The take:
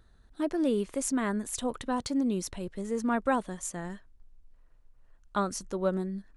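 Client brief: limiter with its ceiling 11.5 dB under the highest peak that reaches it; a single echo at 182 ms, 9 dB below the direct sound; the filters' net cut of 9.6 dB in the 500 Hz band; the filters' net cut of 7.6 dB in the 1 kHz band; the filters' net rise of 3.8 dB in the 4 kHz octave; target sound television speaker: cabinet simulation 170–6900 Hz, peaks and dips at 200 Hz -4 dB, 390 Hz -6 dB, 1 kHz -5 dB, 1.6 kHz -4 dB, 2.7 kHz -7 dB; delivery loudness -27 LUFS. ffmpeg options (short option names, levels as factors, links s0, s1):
-af "equalizer=f=500:t=o:g=-8,equalizer=f=1000:t=o:g=-4,equalizer=f=4000:t=o:g=6.5,alimiter=level_in=1.5:limit=0.0631:level=0:latency=1,volume=0.668,highpass=f=170:w=0.5412,highpass=f=170:w=1.3066,equalizer=f=200:t=q:w=4:g=-4,equalizer=f=390:t=q:w=4:g=-6,equalizer=f=1000:t=q:w=4:g=-5,equalizer=f=1600:t=q:w=4:g=-4,equalizer=f=2700:t=q:w=4:g=-7,lowpass=f=6900:w=0.5412,lowpass=f=6900:w=1.3066,aecho=1:1:182:0.355,volume=4.22"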